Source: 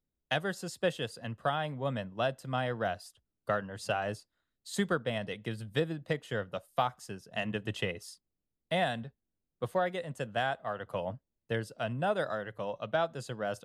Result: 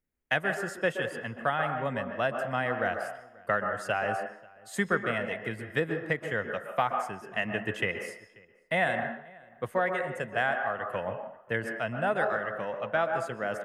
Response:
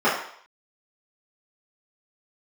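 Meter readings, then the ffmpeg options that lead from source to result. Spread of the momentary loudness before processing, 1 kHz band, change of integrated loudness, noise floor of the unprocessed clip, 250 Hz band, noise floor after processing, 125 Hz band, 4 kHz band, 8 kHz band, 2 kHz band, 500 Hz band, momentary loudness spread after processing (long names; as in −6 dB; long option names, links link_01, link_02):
8 LU, +4.5 dB, +4.0 dB, below −85 dBFS, +1.5 dB, −58 dBFS, −1.0 dB, −2.0 dB, −0.5 dB, +8.0 dB, +3.0 dB, 9 LU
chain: -filter_complex "[0:a]equalizer=frequency=125:width_type=o:width=1:gain=-3,equalizer=frequency=2000:width_type=o:width=1:gain=10,equalizer=frequency=4000:width_type=o:width=1:gain=-10,asplit=2[link_01][link_02];[link_02]adelay=536.4,volume=-24dB,highshelf=frequency=4000:gain=-12.1[link_03];[link_01][link_03]amix=inputs=2:normalize=0,asplit=2[link_04][link_05];[1:a]atrim=start_sample=2205,adelay=122[link_06];[link_05][link_06]afir=irnorm=-1:irlink=0,volume=-25dB[link_07];[link_04][link_07]amix=inputs=2:normalize=0,volume=1dB"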